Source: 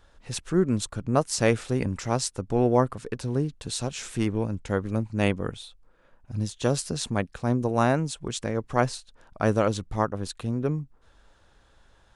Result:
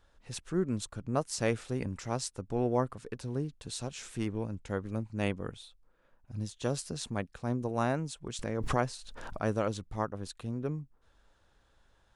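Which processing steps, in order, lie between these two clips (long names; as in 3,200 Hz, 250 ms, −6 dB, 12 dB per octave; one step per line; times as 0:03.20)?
0:08.39–0:09.43: background raised ahead of every attack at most 26 dB per second
level −8 dB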